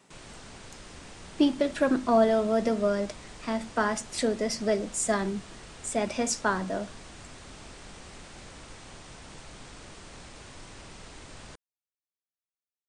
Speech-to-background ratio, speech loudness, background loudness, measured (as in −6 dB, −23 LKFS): 19.0 dB, −27.5 LKFS, −46.5 LKFS